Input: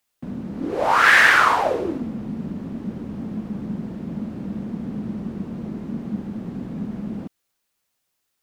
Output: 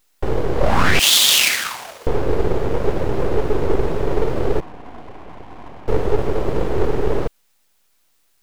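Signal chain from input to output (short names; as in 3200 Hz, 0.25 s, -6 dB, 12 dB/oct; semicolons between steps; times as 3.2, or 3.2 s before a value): 4.6–5.88 vowel filter e; full-wave rectifier; 0.99–2.07 differentiator; maximiser +17 dB; gain -2.5 dB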